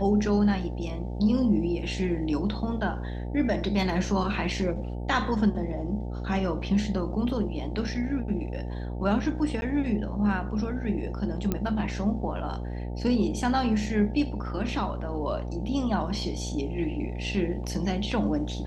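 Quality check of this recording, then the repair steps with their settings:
buzz 60 Hz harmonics 15 -33 dBFS
9.61–9.62 s: dropout 11 ms
11.52 s: pop -13 dBFS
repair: de-click; de-hum 60 Hz, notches 15; interpolate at 9.61 s, 11 ms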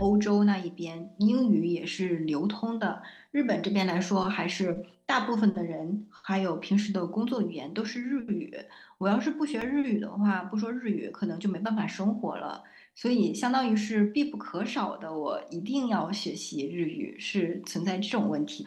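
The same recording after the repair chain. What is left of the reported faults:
nothing left

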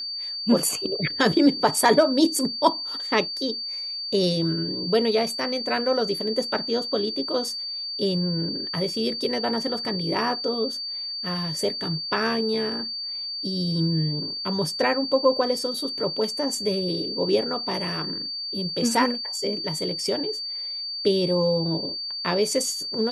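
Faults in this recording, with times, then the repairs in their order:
whine 4.6 kHz -29 dBFS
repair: band-stop 4.6 kHz, Q 30

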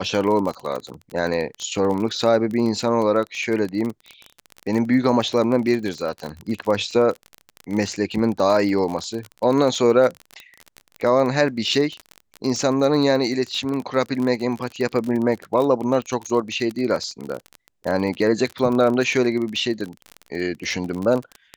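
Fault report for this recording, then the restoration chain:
crackle 31 per s -25 dBFS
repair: de-click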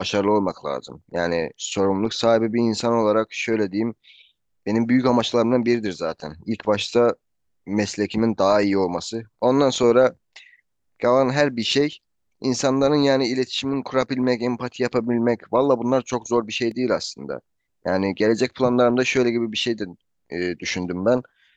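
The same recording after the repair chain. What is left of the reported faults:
nothing left

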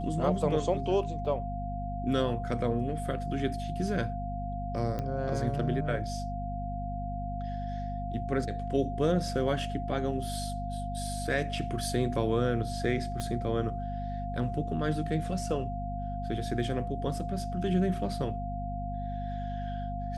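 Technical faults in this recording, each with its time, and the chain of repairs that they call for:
hum 50 Hz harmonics 5 -36 dBFS
whine 700 Hz -37 dBFS
1.25 s: dropout 4.9 ms
4.99 s: pop -22 dBFS
13.20 s: pop -20 dBFS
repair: de-click; band-stop 700 Hz, Q 30; de-hum 50 Hz, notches 5; interpolate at 1.25 s, 4.9 ms

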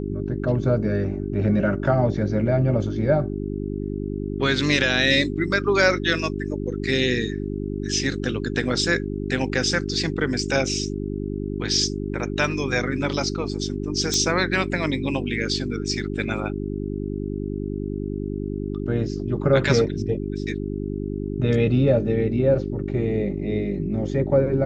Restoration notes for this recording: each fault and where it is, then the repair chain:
hum 50 Hz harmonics 8 -28 dBFS
14.14 s: pop -9 dBFS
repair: de-click; de-hum 50 Hz, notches 8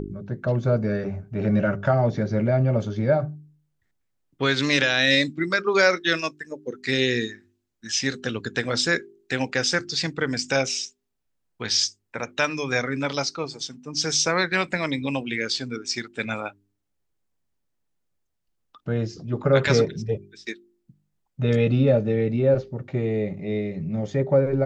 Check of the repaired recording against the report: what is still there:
nothing left

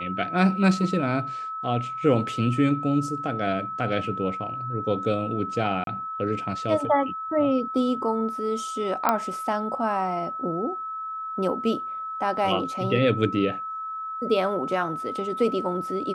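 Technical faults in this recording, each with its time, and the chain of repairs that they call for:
whine 1.3 kHz -30 dBFS
5.84–5.87 s: dropout 32 ms
9.09 s: pop -7 dBFS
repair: de-click; band-stop 1.3 kHz, Q 30; interpolate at 5.84 s, 32 ms

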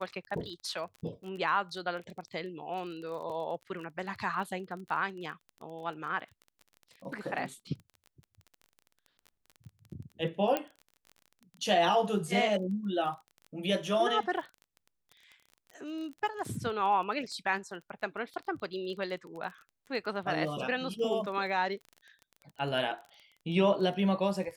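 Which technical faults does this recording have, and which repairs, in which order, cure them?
crackle 22 per s -40 dBFS
10.57 s: pop -16 dBFS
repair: de-click

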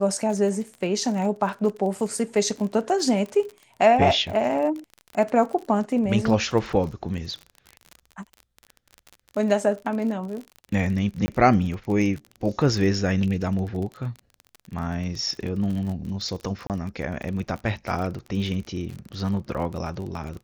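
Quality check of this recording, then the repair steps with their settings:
crackle 34 per s -31 dBFS
11.26–11.28 s: dropout 20 ms
16.67–16.70 s: dropout 28 ms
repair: de-click; interpolate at 11.26 s, 20 ms; interpolate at 16.67 s, 28 ms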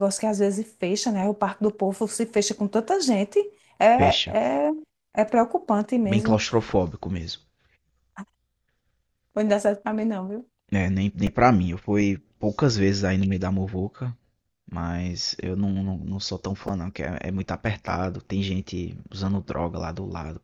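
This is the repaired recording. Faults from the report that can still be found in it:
nothing left

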